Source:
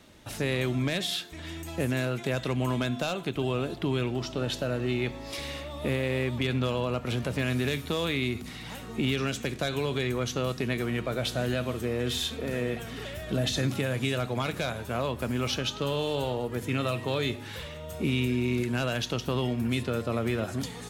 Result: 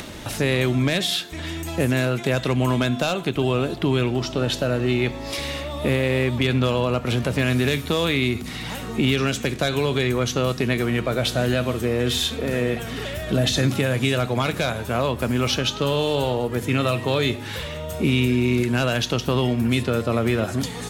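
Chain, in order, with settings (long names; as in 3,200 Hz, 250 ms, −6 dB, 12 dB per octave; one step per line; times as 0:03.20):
upward compression, threshold −33 dBFS
level +7.5 dB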